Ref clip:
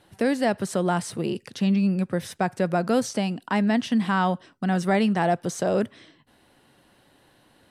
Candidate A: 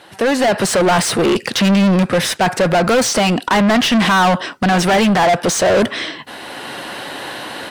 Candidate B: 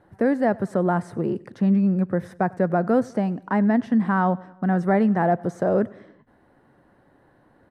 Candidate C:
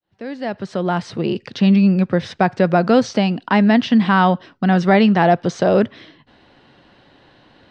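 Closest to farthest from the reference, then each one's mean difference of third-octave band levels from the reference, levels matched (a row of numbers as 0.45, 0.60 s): C, B, A; 3.0, 5.0, 8.5 dB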